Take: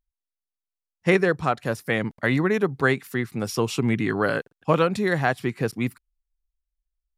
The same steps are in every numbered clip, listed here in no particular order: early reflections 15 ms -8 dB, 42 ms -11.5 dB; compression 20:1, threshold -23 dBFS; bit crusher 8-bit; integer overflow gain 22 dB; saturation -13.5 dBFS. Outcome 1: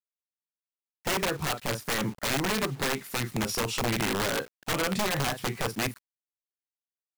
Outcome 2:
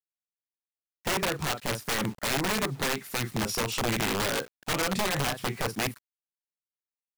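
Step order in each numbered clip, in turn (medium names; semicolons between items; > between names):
saturation > early reflections > compression > bit crusher > integer overflow; saturation > early reflections > bit crusher > compression > integer overflow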